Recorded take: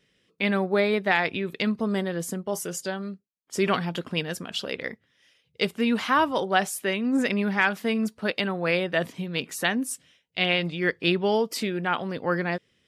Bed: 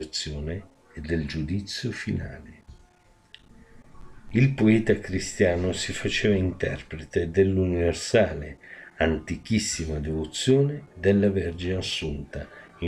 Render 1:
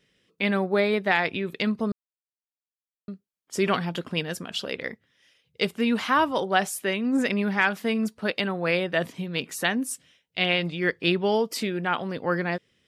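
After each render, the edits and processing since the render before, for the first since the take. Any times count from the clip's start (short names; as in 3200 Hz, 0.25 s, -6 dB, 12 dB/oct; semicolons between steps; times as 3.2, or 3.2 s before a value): 1.92–3.08 mute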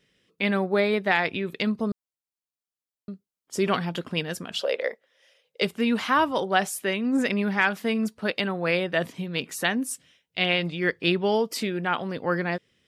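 1.63–3.72 bell 2000 Hz -4 dB 1.3 oct; 4.61–5.62 resonant high-pass 550 Hz, resonance Q 4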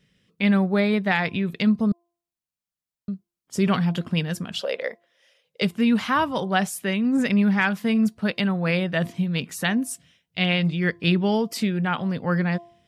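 resonant low shelf 250 Hz +7 dB, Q 1.5; de-hum 343.8 Hz, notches 3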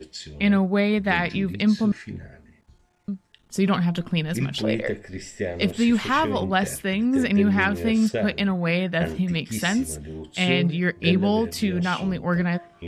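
add bed -7 dB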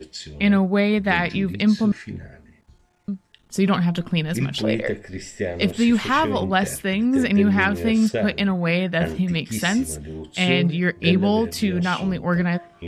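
gain +2 dB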